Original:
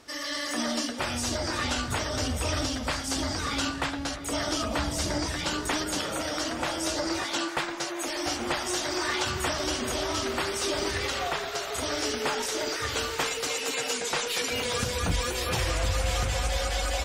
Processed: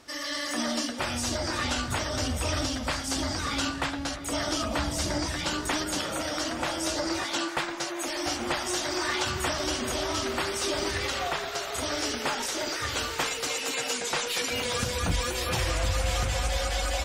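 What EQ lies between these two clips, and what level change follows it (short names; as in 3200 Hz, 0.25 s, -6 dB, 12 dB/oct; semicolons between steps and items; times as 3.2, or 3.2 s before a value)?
notch 440 Hz, Q 12; 0.0 dB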